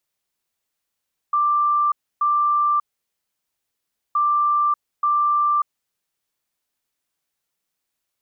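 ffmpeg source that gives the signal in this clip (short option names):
-f lavfi -i "aevalsrc='0.168*sin(2*PI*1180*t)*clip(min(mod(mod(t,2.82),0.88),0.59-mod(mod(t,2.82),0.88))/0.005,0,1)*lt(mod(t,2.82),1.76)':d=5.64:s=44100"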